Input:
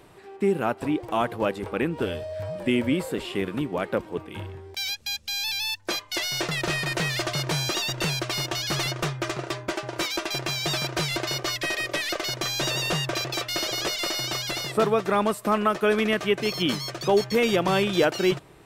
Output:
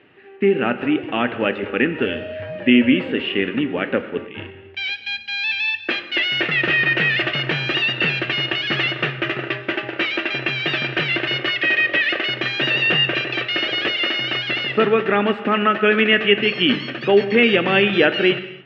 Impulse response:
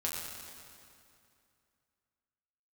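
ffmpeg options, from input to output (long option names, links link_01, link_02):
-filter_complex "[0:a]agate=range=-6dB:threshold=-36dB:ratio=16:detection=peak,highpass=140,equalizer=frequency=160:width_type=q:width=4:gain=-4,equalizer=frequency=250:width_type=q:width=4:gain=4,equalizer=frequency=670:width_type=q:width=4:gain=-5,equalizer=frequency=1000:width_type=q:width=4:gain=-10,equalizer=frequency=1800:width_type=q:width=4:gain=8,equalizer=frequency=2800:width_type=q:width=4:gain=10,lowpass=frequency=3000:width=0.5412,lowpass=frequency=3000:width=1.3066,asplit=2[link_01][link_02];[1:a]atrim=start_sample=2205,afade=type=out:start_time=0.35:duration=0.01,atrim=end_sample=15876[link_03];[link_02][link_03]afir=irnorm=-1:irlink=0,volume=-9.5dB[link_04];[link_01][link_04]amix=inputs=2:normalize=0,volume=3.5dB"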